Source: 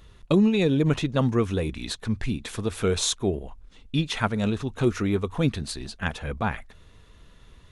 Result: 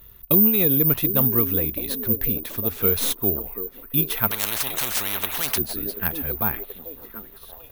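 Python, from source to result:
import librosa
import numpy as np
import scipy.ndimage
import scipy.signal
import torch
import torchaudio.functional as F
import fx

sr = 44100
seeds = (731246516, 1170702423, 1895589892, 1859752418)

y = fx.tracing_dist(x, sr, depth_ms=0.076)
y = fx.echo_stepped(y, sr, ms=732, hz=330.0, octaves=0.7, feedback_pct=70, wet_db=-7)
y = (np.kron(scipy.signal.resample_poly(y, 1, 3), np.eye(3)[0]) * 3)[:len(y)]
y = fx.spectral_comp(y, sr, ratio=10.0, at=(4.31, 5.58))
y = F.gain(torch.from_numpy(y), -2.0).numpy()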